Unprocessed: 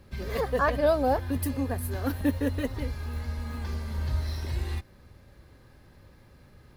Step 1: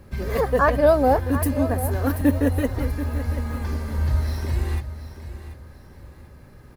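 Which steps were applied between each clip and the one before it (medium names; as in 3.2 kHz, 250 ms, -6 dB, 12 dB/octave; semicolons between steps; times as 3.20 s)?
peaking EQ 3.7 kHz -7 dB 1.3 oct; feedback delay 734 ms, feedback 32%, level -12.5 dB; trim +7 dB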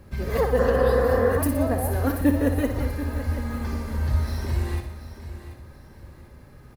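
feedback delay 60 ms, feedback 57%, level -8.5 dB; spectral replace 0.62–1.35 s, 210–2500 Hz before; trim -1.5 dB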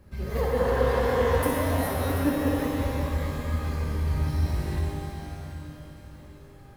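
pitch-shifted reverb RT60 2.6 s, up +12 st, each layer -8 dB, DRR -2 dB; trim -7 dB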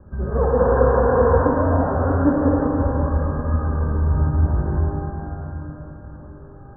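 steep low-pass 1.6 kHz 96 dB/octave; trim +7.5 dB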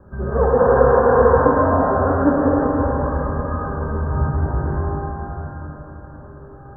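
bass shelf 260 Hz -7.5 dB; on a send at -8 dB: reverberation RT60 2.1 s, pre-delay 4 ms; on the sum: trim +4.5 dB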